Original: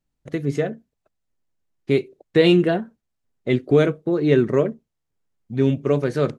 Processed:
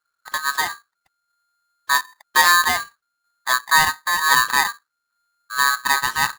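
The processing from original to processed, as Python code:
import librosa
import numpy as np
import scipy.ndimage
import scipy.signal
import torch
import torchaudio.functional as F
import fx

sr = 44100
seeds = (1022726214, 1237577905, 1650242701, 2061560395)

y = x * np.sign(np.sin(2.0 * np.pi * 1400.0 * np.arange(len(x)) / sr))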